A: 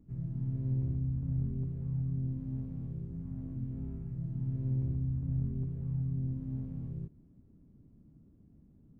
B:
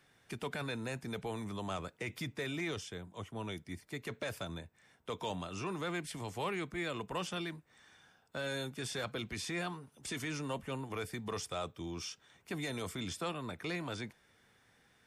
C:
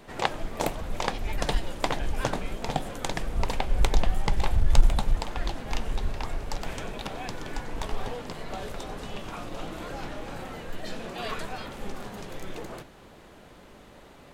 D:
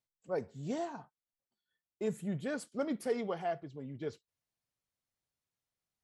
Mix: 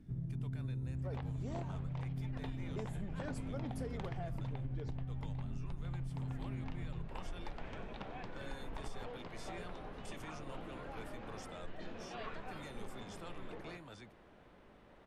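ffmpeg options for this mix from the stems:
ffmpeg -i stem1.wav -i stem2.wav -i stem3.wav -i stem4.wav -filter_complex "[0:a]volume=2dB[link_01];[1:a]volume=-13dB[link_02];[2:a]alimiter=limit=-13dB:level=0:latency=1:release=282,adelay=950,volume=-10.5dB[link_03];[3:a]adelay=750,volume=-2.5dB[link_04];[link_02][link_04]amix=inputs=2:normalize=0,alimiter=level_in=6.5dB:limit=-24dB:level=0:latency=1:release=172,volume=-6.5dB,volume=0dB[link_05];[link_01][link_03]amix=inputs=2:normalize=0,lowpass=2800,acompressor=threshold=-32dB:ratio=3,volume=0dB[link_06];[link_05][link_06]amix=inputs=2:normalize=0,acompressor=threshold=-37dB:ratio=6" out.wav

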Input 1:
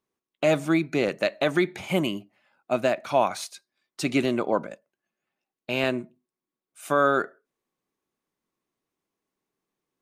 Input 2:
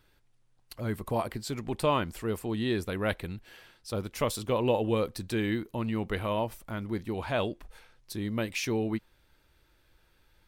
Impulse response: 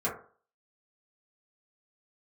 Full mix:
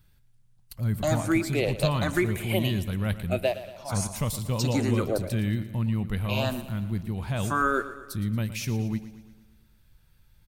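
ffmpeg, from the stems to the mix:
-filter_complex "[0:a]asplit=2[link_01][link_02];[link_02]afreqshift=1.1[link_03];[link_01][link_03]amix=inputs=2:normalize=1,adelay=600,volume=-1.5dB,asplit=2[link_04][link_05];[link_05]volume=-14.5dB[link_06];[1:a]lowshelf=frequency=240:width_type=q:width=1.5:gain=11.5,volume=-5dB,asplit=3[link_07][link_08][link_09];[link_08]volume=-14dB[link_10];[link_09]apad=whole_len=468107[link_11];[link_04][link_11]sidechaingate=range=-33dB:threshold=-47dB:ratio=16:detection=peak[link_12];[link_06][link_10]amix=inputs=2:normalize=0,aecho=0:1:115|230|345|460|575|690|805|920:1|0.55|0.303|0.166|0.0915|0.0503|0.0277|0.0152[link_13];[link_12][link_07][link_13]amix=inputs=3:normalize=0,crystalizer=i=1.5:c=0"

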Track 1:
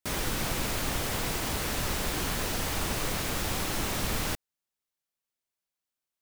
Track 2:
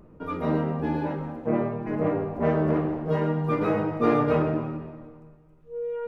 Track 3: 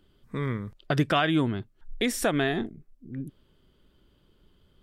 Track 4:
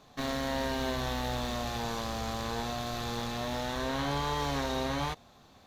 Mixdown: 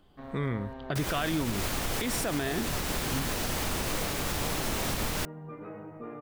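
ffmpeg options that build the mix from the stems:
ffmpeg -i stem1.wav -i stem2.wav -i stem3.wav -i stem4.wav -filter_complex "[0:a]adelay=900,volume=0.5dB[link_01];[1:a]lowpass=frequency=2600:width=0.5412,lowpass=frequency=2600:width=1.3066,acompressor=threshold=-33dB:ratio=3,adelay=2000,volume=-9.5dB[link_02];[2:a]volume=0.5dB[link_03];[3:a]lowpass=1400,volume=-9.5dB[link_04];[link_01][link_02][link_03][link_04]amix=inputs=4:normalize=0,alimiter=limit=-20dB:level=0:latency=1:release=105" out.wav

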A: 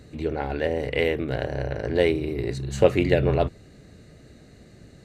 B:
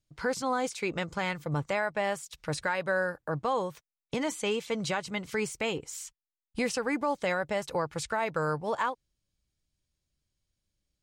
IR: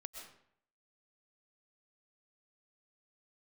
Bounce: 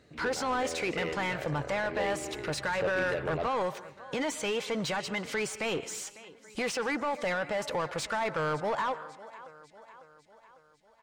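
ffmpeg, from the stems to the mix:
-filter_complex "[0:a]volume=-15.5dB[link_01];[1:a]alimiter=level_in=1.5dB:limit=-24dB:level=0:latency=1:release=31,volume=-1.5dB,volume=-0.5dB,asplit=3[link_02][link_03][link_04];[link_03]volume=-8.5dB[link_05];[link_04]volume=-21dB[link_06];[2:a]atrim=start_sample=2205[link_07];[link_05][link_07]afir=irnorm=-1:irlink=0[link_08];[link_06]aecho=0:1:550|1100|1650|2200|2750|3300|3850|4400:1|0.54|0.292|0.157|0.085|0.0459|0.0248|0.0134[link_09];[link_01][link_02][link_08][link_09]amix=inputs=4:normalize=0,asplit=2[link_10][link_11];[link_11]highpass=frequency=720:poles=1,volume=16dB,asoftclip=type=tanh:threshold=-22.5dB[link_12];[link_10][link_12]amix=inputs=2:normalize=0,lowpass=frequency=3000:poles=1,volume=-6dB"

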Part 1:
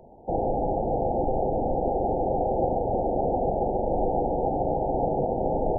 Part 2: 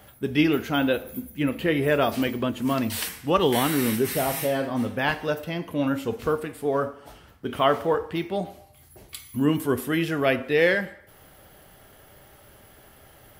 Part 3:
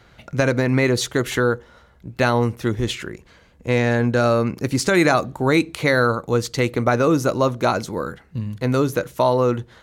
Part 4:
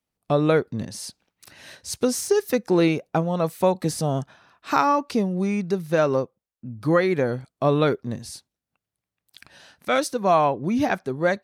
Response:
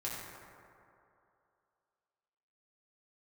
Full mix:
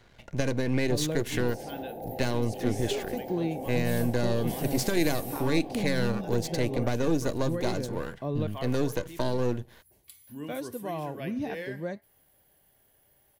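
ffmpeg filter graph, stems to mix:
-filter_complex "[0:a]highpass=120,adelay=1100,volume=-13dB[link_01];[1:a]highshelf=frequency=8300:gain=11.5,adelay=950,volume=-18dB[link_02];[2:a]aeval=exprs='if(lt(val(0),0),0.251*val(0),val(0))':channel_layout=same,volume=-3.5dB[link_03];[3:a]lowshelf=frequency=480:gain=10,flanger=delay=0.6:depth=7.7:regen=-83:speed=0.5:shape=triangular,adelay=600,volume=-13dB,asplit=3[link_04][link_05][link_06];[link_04]atrim=end=8.47,asetpts=PTS-STARTPTS,afade=type=out:start_time=8.466:duration=0.004:curve=hsin[link_07];[link_05]atrim=start=8.47:end=10.27,asetpts=PTS-STARTPTS,volume=0[link_08];[link_06]atrim=start=10.27,asetpts=PTS-STARTPTS,afade=type=in:duration=0.004:curve=hsin[link_09];[link_07][link_08][link_09]concat=n=3:v=0:a=1[link_10];[link_01][link_02][link_03][link_10]amix=inputs=4:normalize=0,bandreject=frequency=1300:width=5.7,acrossover=split=450|3000[link_11][link_12][link_13];[link_12]acompressor=threshold=-34dB:ratio=6[link_14];[link_11][link_14][link_13]amix=inputs=3:normalize=0"

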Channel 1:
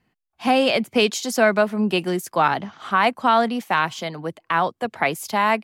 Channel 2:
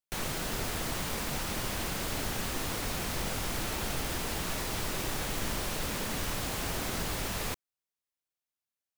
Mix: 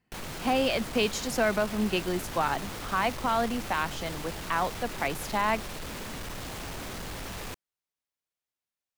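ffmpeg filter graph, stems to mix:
ffmpeg -i stem1.wav -i stem2.wav -filter_complex "[0:a]alimiter=limit=-9.5dB:level=0:latency=1,volume=-7dB[link_01];[1:a]highshelf=frequency=6200:gain=-5.5,asoftclip=type=tanh:threshold=-35dB,volume=1dB[link_02];[link_01][link_02]amix=inputs=2:normalize=0" out.wav

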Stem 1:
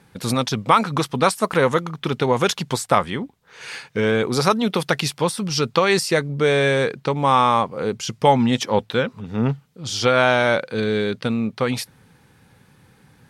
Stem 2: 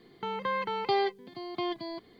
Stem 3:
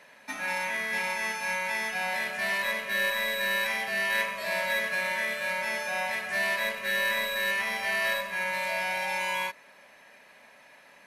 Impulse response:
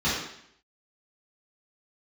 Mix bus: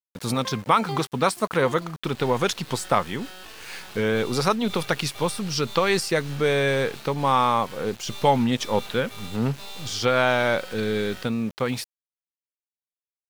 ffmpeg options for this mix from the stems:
-filter_complex "[0:a]volume=-4dB[link_01];[1:a]tremolo=f=2.3:d=0.83,volume=-4.5dB[link_02];[2:a]aecho=1:1:2.2:0.76,aeval=exprs='abs(val(0))':channel_layout=same,adelay=1750,volume=-11.5dB[link_03];[link_01][link_02][link_03]amix=inputs=3:normalize=0,aeval=exprs='val(0)*gte(abs(val(0)),0.0112)':channel_layout=same"

